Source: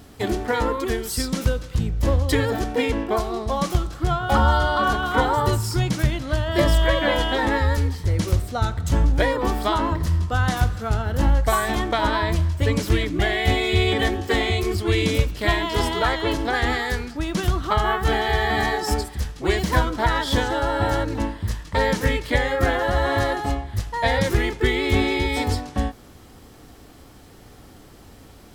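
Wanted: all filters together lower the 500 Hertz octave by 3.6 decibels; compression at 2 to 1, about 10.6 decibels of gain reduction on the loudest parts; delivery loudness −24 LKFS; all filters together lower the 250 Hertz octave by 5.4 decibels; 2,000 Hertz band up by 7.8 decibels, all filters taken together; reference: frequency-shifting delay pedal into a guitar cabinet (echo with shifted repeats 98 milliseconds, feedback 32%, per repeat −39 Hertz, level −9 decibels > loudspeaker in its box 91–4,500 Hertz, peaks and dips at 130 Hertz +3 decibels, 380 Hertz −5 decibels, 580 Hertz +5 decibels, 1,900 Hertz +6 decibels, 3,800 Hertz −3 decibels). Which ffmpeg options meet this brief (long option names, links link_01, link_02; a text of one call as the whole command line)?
ffmpeg -i in.wav -filter_complex "[0:a]equalizer=frequency=250:width_type=o:gain=-4.5,equalizer=frequency=500:width_type=o:gain=-5.5,equalizer=frequency=2000:width_type=o:gain=5,acompressor=threshold=-34dB:ratio=2,asplit=5[link_01][link_02][link_03][link_04][link_05];[link_02]adelay=98,afreqshift=-39,volume=-9dB[link_06];[link_03]adelay=196,afreqshift=-78,volume=-18.9dB[link_07];[link_04]adelay=294,afreqshift=-117,volume=-28.8dB[link_08];[link_05]adelay=392,afreqshift=-156,volume=-38.7dB[link_09];[link_01][link_06][link_07][link_08][link_09]amix=inputs=5:normalize=0,highpass=91,equalizer=frequency=130:width_type=q:width=4:gain=3,equalizer=frequency=380:width_type=q:width=4:gain=-5,equalizer=frequency=580:width_type=q:width=4:gain=5,equalizer=frequency=1900:width_type=q:width=4:gain=6,equalizer=frequency=3800:width_type=q:width=4:gain=-3,lowpass=frequency=4500:width=0.5412,lowpass=frequency=4500:width=1.3066,volume=5dB" out.wav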